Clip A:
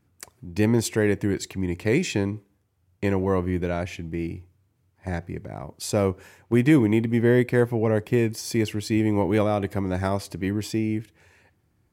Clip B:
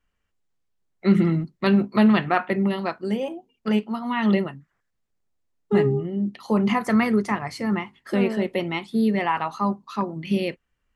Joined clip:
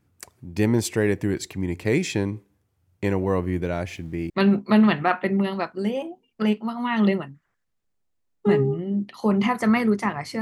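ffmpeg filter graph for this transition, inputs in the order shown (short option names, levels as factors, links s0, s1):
-filter_complex "[0:a]asettb=1/sr,asplit=3[s0][s1][s2];[s0]atrim=end=3.734[s3];[s1]atrim=start=3.73:end=4.3,asetpts=PTS-STARTPTS,afade=t=in:d=0.004:c=qsin,afade=t=out:st=0.566:d=0.004:c=qsin,aeval=exprs='val(0)*gte(abs(val(0)),0.00224)':c=same[s4];[s2]atrim=start=4.296[s5];[s3][s4]acrossfade=d=0.004:c1=hsin:c2=qsin[s6];[s6][s5]acrossfade=d=0.004:c1=qsin:c2=hsin,apad=whole_dur=10.41,atrim=end=10.41,atrim=end=4.302[s7];[1:a]atrim=start=1.558:end=7.67[s8];[s7][s8]acrossfade=d=0.004:c1=hsin:c2=hsin"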